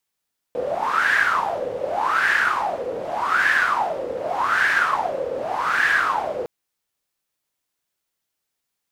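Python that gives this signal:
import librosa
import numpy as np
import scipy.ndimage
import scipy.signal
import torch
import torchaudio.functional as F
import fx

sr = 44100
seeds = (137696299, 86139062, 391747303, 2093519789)

y = fx.wind(sr, seeds[0], length_s=5.91, low_hz=490.0, high_hz=1700.0, q=9.7, gusts=5, swing_db=9.0)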